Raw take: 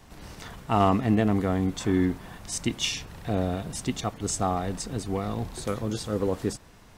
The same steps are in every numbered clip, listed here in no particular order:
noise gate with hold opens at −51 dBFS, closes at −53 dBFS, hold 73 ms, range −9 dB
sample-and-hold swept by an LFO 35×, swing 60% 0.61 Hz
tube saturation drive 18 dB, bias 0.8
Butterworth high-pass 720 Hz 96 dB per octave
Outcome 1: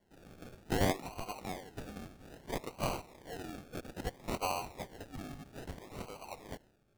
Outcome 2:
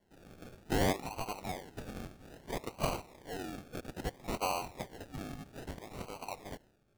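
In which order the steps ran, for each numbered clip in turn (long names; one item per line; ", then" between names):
Butterworth high-pass, then tube saturation, then sample-and-hold swept by an LFO, then noise gate with hold
tube saturation, then Butterworth high-pass, then sample-and-hold swept by an LFO, then noise gate with hold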